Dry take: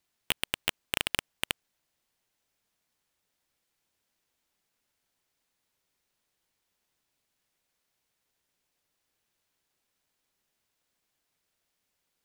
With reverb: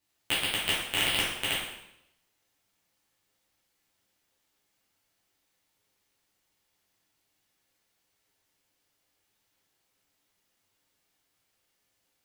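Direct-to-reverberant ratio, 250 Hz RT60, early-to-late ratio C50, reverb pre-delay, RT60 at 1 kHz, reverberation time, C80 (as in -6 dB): -9.0 dB, 0.85 s, 1.5 dB, 5 ms, 0.80 s, 0.80 s, 5.0 dB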